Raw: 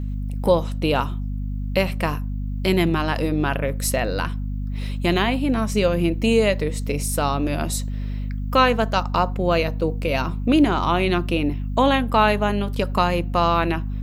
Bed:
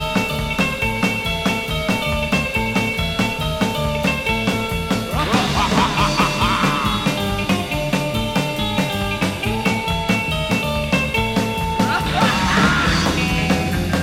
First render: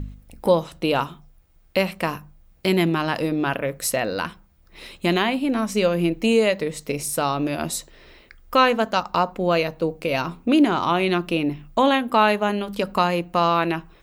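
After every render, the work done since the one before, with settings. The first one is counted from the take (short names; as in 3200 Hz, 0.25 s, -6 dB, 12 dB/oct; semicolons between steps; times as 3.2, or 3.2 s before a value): de-hum 50 Hz, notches 5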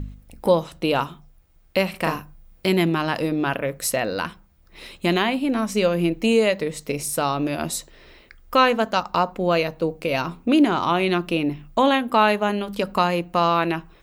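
1.9–2.67 doubler 38 ms -3 dB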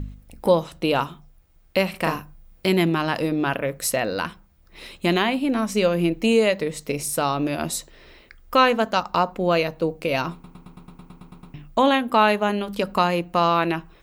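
10.33 stutter in place 0.11 s, 11 plays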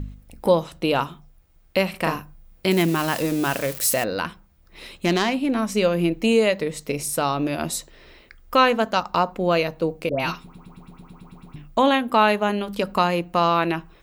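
2.71–4.04 switching spikes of -21 dBFS; 4.96–5.53 self-modulated delay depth 0.083 ms; 10.09–11.56 dispersion highs, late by 0.109 s, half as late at 1100 Hz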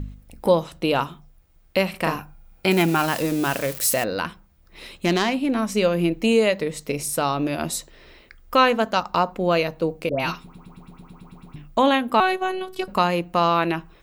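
2.18–3.06 small resonant body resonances 820/1400/2400 Hz, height 11 dB, ringing for 30 ms; 12.2–12.88 robotiser 373 Hz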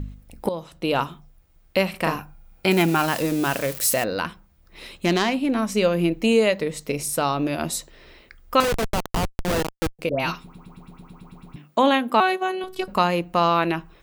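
0.49–1.01 fade in, from -15 dB; 8.6–9.99 Schmitt trigger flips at -19.5 dBFS; 11.56–12.64 HPF 160 Hz 24 dB/oct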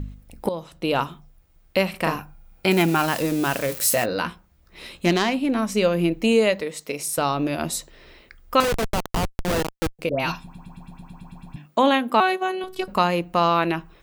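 3.67–5.11 doubler 17 ms -7.5 dB; 6.61–7.18 HPF 430 Hz 6 dB/oct; 10.3–11.66 comb 1.2 ms, depth 67%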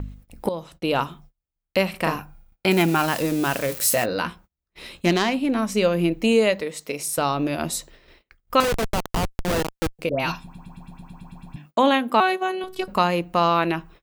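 gate -46 dBFS, range -29 dB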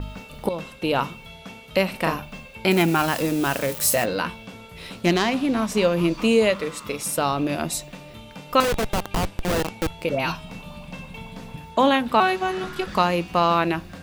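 add bed -21 dB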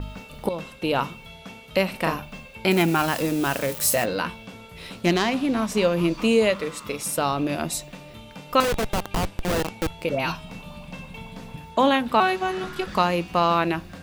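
gain -1 dB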